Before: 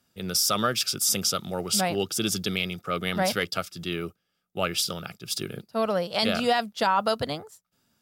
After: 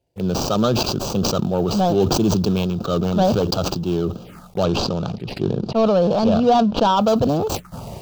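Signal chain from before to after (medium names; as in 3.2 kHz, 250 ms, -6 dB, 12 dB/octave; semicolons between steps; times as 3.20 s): median filter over 25 samples; 4.63–6.95 s: low-pass 7 kHz -> 3.7 kHz 12 dB/octave; waveshaping leveller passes 1; touch-sensitive phaser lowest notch 210 Hz, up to 2 kHz, full sweep at -34 dBFS; decay stretcher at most 23 dB/s; trim +8 dB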